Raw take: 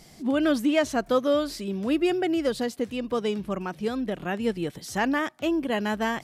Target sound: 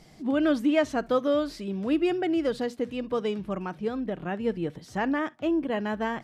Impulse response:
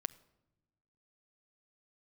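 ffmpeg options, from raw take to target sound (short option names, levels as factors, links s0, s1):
-filter_complex "[0:a]asetnsamples=n=441:p=0,asendcmd='3.78 lowpass f 1700',lowpass=f=3200:p=1[s0];[1:a]atrim=start_sample=2205,atrim=end_sample=3087[s1];[s0][s1]afir=irnorm=-1:irlink=0"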